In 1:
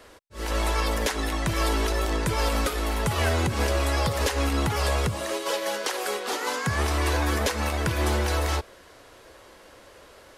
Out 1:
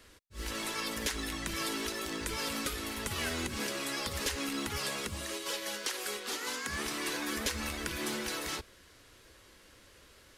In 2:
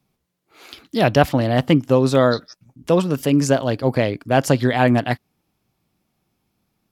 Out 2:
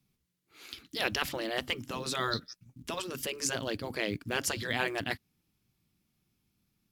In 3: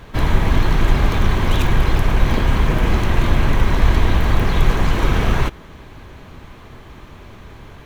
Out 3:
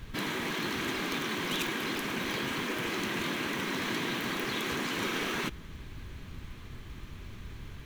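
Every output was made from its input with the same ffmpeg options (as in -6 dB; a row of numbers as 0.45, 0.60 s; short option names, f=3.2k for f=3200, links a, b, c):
-af "equalizer=f=700:t=o:w=1.8:g=-12.5,afftfilt=real='re*lt(hypot(re,im),0.316)':imag='im*lt(hypot(re,im),0.316)':win_size=1024:overlap=0.75,acrusher=bits=8:mode=log:mix=0:aa=0.000001,volume=-3.5dB"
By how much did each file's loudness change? -9.0, -15.0, -13.5 LU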